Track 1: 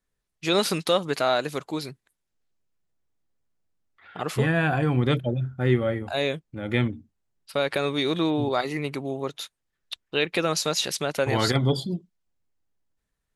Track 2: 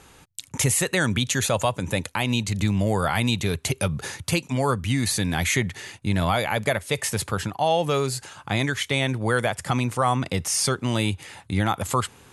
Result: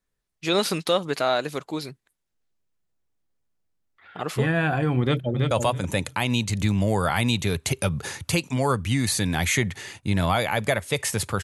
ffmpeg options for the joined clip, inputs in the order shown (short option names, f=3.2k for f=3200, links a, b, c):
-filter_complex "[0:a]apad=whole_dur=11.43,atrim=end=11.43,atrim=end=5.512[a];[1:a]atrim=start=1.498:end=7.42[b];[a][b]acrossfade=d=0.004:c1=hsin:c2=hsin,asplit=2[c][d];[d]afade=t=in:st=5.01:d=0.01,afade=t=out:st=5.51:d=0.01,aecho=0:1:330|660|990:0.595662|0.0893493|0.0134024[e];[c][e]amix=inputs=2:normalize=0"